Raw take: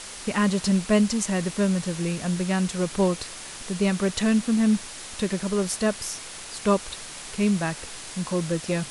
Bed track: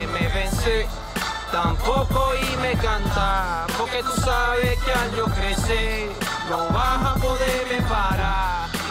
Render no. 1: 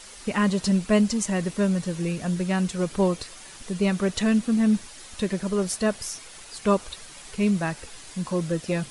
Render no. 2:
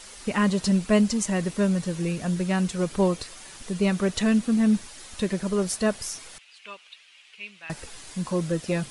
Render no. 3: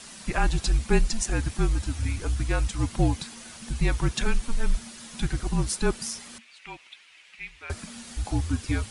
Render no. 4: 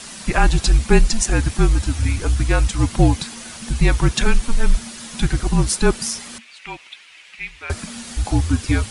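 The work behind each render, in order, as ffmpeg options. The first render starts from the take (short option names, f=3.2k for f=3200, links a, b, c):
-af "afftdn=nr=8:nf=-39"
-filter_complex "[0:a]asettb=1/sr,asplit=3[a][b][c];[a]atrim=end=6.384[d];[b]atrim=start=6.38:end=7.7,asetpts=PTS-STARTPTS,afade=t=in:d=0.004:c=qsin,afade=t=out:st=1.316:d=0.004:c=qsin,bandpass=f=2.7k:t=q:w=3.4[e];[c]atrim=start=7.696[f];[d][e]acrossfade=d=0.004:c1=hsin:c2=qsin[g];[g][f]acrossfade=d=0.004:c1=qsin:c2=hsin"
-af "afreqshift=-240"
-af "volume=8.5dB,alimiter=limit=-1dB:level=0:latency=1"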